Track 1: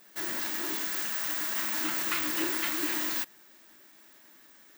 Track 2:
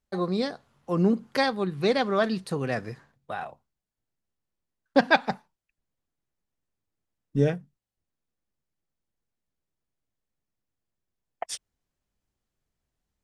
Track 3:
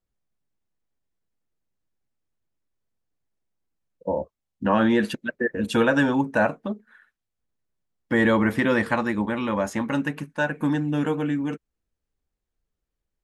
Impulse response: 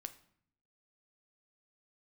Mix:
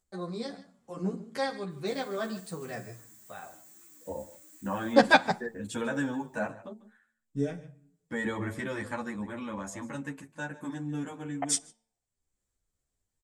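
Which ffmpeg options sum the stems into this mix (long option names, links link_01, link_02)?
-filter_complex "[0:a]acrossover=split=410|6900[link_01][link_02][link_03];[link_01]acompressor=threshold=-47dB:ratio=4[link_04];[link_02]acompressor=threshold=-52dB:ratio=4[link_05];[link_03]acompressor=threshold=-34dB:ratio=4[link_06];[link_04][link_05][link_06]amix=inputs=3:normalize=0,adelay=1700,volume=-17dB[link_07];[1:a]volume=0dB,asplit=3[link_08][link_09][link_10];[link_09]volume=-3dB[link_11];[link_10]volume=-24dB[link_12];[2:a]equalizer=frequency=97:width_type=o:width=0.31:gain=9,bandreject=frequency=113:width_type=h:width=4,bandreject=frequency=226:width_type=h:width=4,bandreject=frequency=339:width_type=h:width=4,bandreject=frequency=452:width_type=h:width=4,bandreject=frequency=565:width_type=h:width=4,bandreject=frequency=678:width_type=h:width=4,bandreject=frequency=791:width_type=h:width=4,bandreject=frequency=904:width_type=h:width=4,acompressor=mode=upward:threshold=-60dB:ratio=2.5,volume=-9.5dB,asplit=3[link_13][link_14][link_15];[link_14]volume=-17dB[link_16];[link_15]apad=whole_len=583449[link_17];[link_08][link_17]sidechaingate=range=-33dB:threshold=-54dB:ratio=16:detection=peak[link_18];[3:a]atrim=start_sample=2205[link_19];[link_11][link_19]afir=irnorm=-1:irlink=0[link_20];[link_12][link_16]amix=inputs=2:normalize=0,aecho=0:1:147:1[link_21];[link_07][link_18][link_13][link_20][link_21]amix=inputs=5:normalize=0,equalizer=frequency=7700:width=2:gain=13.5,bandreject=frequency=2800:width=15,asplit=2[link_22][link_23];[link_23]adelay=10.5,afreqshift=-2.2[link_24];[link_22][link_24]amix=inputs=2:normalize=1"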